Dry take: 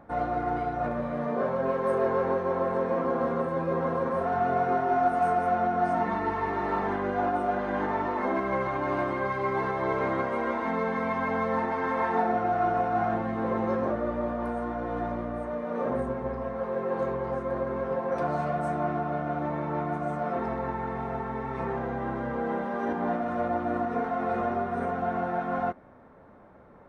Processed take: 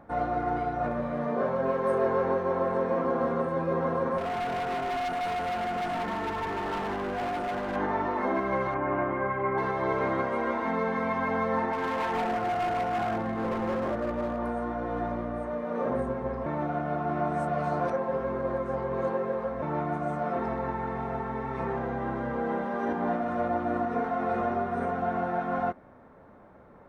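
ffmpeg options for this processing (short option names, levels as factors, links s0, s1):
-filter_complex "[0:a]asettb=1/sr,asplit=3[s0][s1][s2];[s0]atrim=end=4.184[s3];[s1]atrim=start=4.18:end=7.76,asetpts=PTS-STARTPTS,afade=t=in:d=0.004:c=qsin,afade=t=out:st=3.576:d=0.004:c=qsin,asoftclip=type=hard:threshold=0.0376[s4];[s2]atrim=start=7.756[s5];[s3][s4]acrossfade=d=0.004:c1=hsin:c2=qsin[s6];[s6][s5]acrossfade=d=0.004:c1=qsin:c2=hsin,asettb=1/sr,asplit=3[s7][s8][s9];[s7]atrim=end=8.744[s10];[s8]atrim=start=8.74:end=9.58,asetpts=PTS-STARTPTS,afade=t=in:d=0.004:c=qsin,afade=t=out:st=0.836:d=0.004:c=qsin,lowpass=f=2400:w=0.5412,lowpass=f=2400:w=1.3066[s11];[s9]atrim=start=9.576[s12];[s10][s11]acrossfade=d=0.004:c1=hsin:c2=qsin[s13];[s13][s12]acrossfade=d=0.004:c1=qsin:c2=hsin,asettb=1/sr,asplit=3[s14][s15][s16];[s14]atrim=end=11.734[s17];[s15]atrim=start=11.73:end=14.39,asetpts=PTS-STARTPTS,afade=t=in:d=0.004:c=qsin,afade=t=out:st=2.656:d=0.004:c=qsin,volume=18.8,asoftclip=hard,volume=0.0531[s18];[s16]atrim=start=14.386[s19];[s17][s18]acrossfade=d=0.004:c1=hsin:c2=qsin[s20];[s20][s19]acrossfade=d=0.004:c1=qsin:c2=hsin,asplit=3[s21][s22][s23];[s21]atrim=end=16.462[s24];[s22]atrim=start=16.458:end=19.622,asetpts=PTS-STARTPTS,areverse[s25];[s23]atrim=start=19.618[s26];[s24][s25]acrossfade=d=0.004:c1=hsin:c2=hsin[s27];[s27][s26]acrossfade=d=0.004:c1=hsin:c2=hsin"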